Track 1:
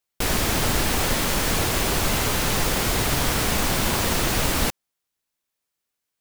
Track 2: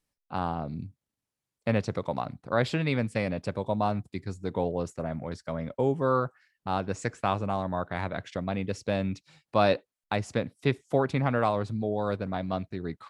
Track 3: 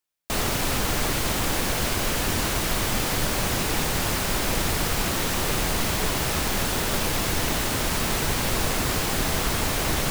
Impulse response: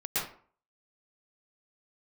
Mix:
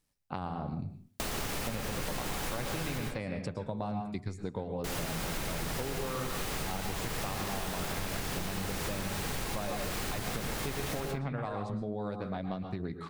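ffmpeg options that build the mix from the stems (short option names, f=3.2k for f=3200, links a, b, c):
-filter_complex "[1:a]bass=f=250:g=3,treble=f=4k:g=2,tremolo=f=97:d=0.4,volume=3dB,asplit=2[a][b];[b]volume=-20.5dB[c];[2:a]adelay=900,volume=-4dB,asplit=3[d][e][f];[d]atrim=end=2.98,asetpts=PTS-STARTPTS,afade=t=out:st=2.976:d=0.004:c=hsin[g];[e]atrim=start=2.98:end=4.84,asetpts=PTS-STARTPTS,volume=0[h];[f]atrim=start=4.84,asetpts=PTS-STARTPTS,afade=t=in:d=0.004:c=hsin[i];[g][h][i]concat=n=3:v=0:a=1,asplit=2[j][k];[k]volume=-13.5dB[l];[a][j]amix=inputs=2:normalize=0,acompressor=threshold=-32dB:ratio=6,volume=0dB[m];[3:a]atrim=start_sample=2205[n];[c][l]amix=inputs=2:normalize=0[o];[o][n]afir=irnorm=-1:irlink=0[p];[m][p]amix=inputs=2:normalize=0,acompressor=threshold=-31dB:ratio=6"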